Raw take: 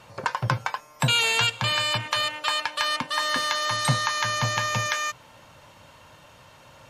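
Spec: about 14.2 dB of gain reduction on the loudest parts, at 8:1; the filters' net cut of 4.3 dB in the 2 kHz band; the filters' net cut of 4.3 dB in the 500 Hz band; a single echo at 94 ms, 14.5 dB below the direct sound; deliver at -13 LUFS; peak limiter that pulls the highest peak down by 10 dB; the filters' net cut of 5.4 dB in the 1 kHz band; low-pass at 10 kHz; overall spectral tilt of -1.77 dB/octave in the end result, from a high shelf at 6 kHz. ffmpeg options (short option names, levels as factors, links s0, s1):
-af "lowpass=10000,equalizer=f=500:t=o:g=-3.5,equalizer=f=1000:t=o:g=-4.5,equalizer=f=2000:t=o:g=-5,highshelf=f=6000:g=6,acompressor=threshold=0.0224:ratio=8,alimiter=level_in=1.19:limit=0.0631:level=0:latency=1,volume=0.841,aecho=1:1:94:0.188,volume=14.1"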